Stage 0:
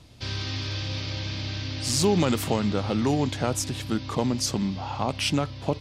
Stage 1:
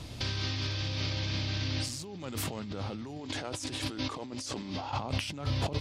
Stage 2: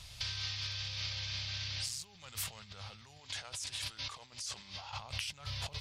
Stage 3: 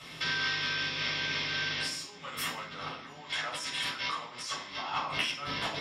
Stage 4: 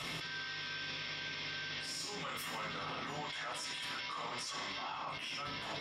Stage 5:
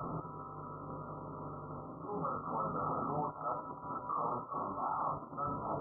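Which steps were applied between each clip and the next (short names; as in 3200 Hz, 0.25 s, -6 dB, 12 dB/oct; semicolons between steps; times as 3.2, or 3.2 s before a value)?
spectral gain 3.2–4.92, 240–11000 Hz +9 dB; limiter -13.5 dBFS, peak gain reduction 10.5 dB; negative-ratio compressor -36 dBFS, ratio -1
passive tone stack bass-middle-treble 10-0-10
octaver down 1 oct, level +3 dB; resonator 60 Hz, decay 0.41 s, harmonics all, mix 40%; reverb RT60 0.50 s, pre-delay 3 ms, DRR -5 dB
negative-ratio compressor -41 dBFS, ratio -1; limiter -36 dBFS, peak gain reduction 11 dB; gain +3.5 dB
brick-wall FIR low-pass 1400 Hz; gain +7 dB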